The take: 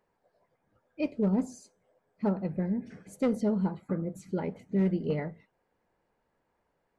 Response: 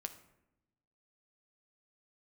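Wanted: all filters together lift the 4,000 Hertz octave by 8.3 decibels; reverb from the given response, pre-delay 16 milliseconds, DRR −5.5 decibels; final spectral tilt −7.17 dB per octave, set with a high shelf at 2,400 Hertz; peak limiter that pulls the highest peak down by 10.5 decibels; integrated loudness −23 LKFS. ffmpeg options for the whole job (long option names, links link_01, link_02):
-filter_complex "[0:a]highshelf=frequency=2400:gain=3.5,equalizer=frequency=4000:width_type=o:gain=8,alimiter=level_in=4.5dB:limit=-24dB:level=0:latency=1,volume=-4.5dB,asplit=2[link_01][link_02];[1:a]atrim=start_sample=2205,adelay=16[link_03];[link_02][link_03]afir=irnorm=-1:irlink=0,volume=8dB[link_04];[link_01][link_04]amix=inputs=2:normalize=0,volume=8.5dB"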